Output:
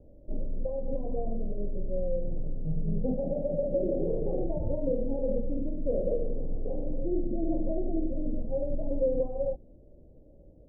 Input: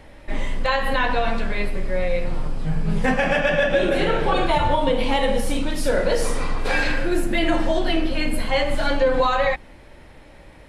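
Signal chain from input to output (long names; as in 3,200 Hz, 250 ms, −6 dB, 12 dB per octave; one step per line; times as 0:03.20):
Butterworth low-pass 610 Hz 48 dB per octave
level −7.5 dB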